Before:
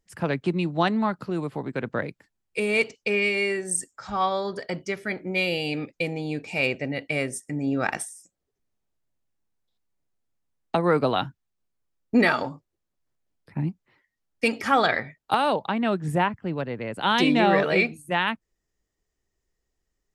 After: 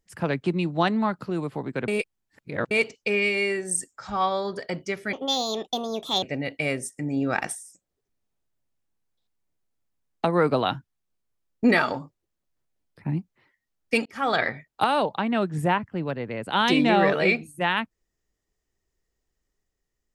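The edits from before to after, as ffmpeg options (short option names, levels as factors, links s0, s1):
-filter_complex "[0:a]asplit=6[s0][s1][s2][s3][s4][s5];[s0]atrim=end=1.882[s6];[s1]atrim=start=1.878:end=2.712,asetpts=PTS-STARTPTS,areverse[s7];[s2]atrim=start=2.708:end=5.134[s8];[s3]atrim=start=5.13:end=6.73,asetpts=PTS-STARTPTS,asetrate=64386,aresample=44100[s9];[s4]atrim=start=6.726:end=14.56,asetpts=PTS-STARTPTS,afade=t=out:st=7.83:d=0.004:c=hsin[s10];[s5]atrim=start=14.56,asetpts=PTS-STARTPTS,afade=t=in:d=0.36[s11];[s6][s7]acrossfade=d=0.004:c1=hsin:c2=hsin[s12];[s12][s8]acrossfade=d=0.004:c1=hsin:c2=hsin[s13];[s13][s9]acrossfade=d=0.004:c1=hsin:c2=hsin[s14];[s10][s11]concat=n=2:v=0:a=1[s15];[s14][s15]acrossfade=d=0.004:c1=hsin:c2=hsin"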